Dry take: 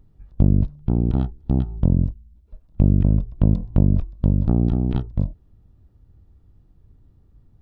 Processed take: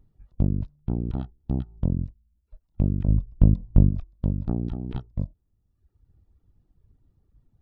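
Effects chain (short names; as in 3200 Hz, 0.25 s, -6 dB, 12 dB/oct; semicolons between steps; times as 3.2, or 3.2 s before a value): reverb removal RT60 1.1 s; 3.08–3.89 tilt -2 dB/oct; gain -6 dB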